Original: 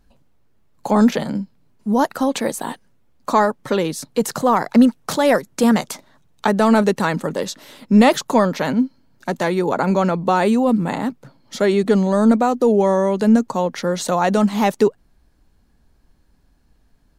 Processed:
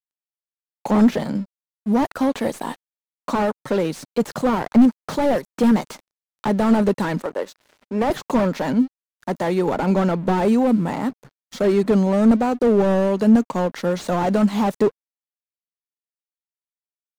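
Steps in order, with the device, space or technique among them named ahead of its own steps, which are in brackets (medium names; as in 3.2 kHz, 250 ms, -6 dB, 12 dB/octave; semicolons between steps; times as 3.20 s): 7.22–8.10 s: three-band isolator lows -22 dB, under 310 Hz, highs -12 dB, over 2.3 kHz; early transistor amplifier (crossover distortion -43.5 dBFS; slew-rate limiter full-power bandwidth 93 Hz)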